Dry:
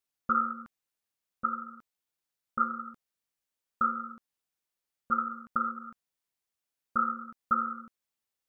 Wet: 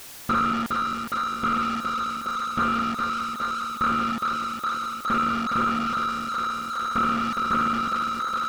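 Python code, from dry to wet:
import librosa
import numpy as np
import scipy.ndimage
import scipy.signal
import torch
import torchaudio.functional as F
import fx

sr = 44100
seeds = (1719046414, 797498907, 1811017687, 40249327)

y = fx.echo_thinned(x, sr, ms=413, feedback_pct=70, hz=280.0, wet_db=-12.5)
y = fx.power_curve(y, sr, exponent=0.35)
y = fx.slew_limit(y, sr, full_power_hz=140.0)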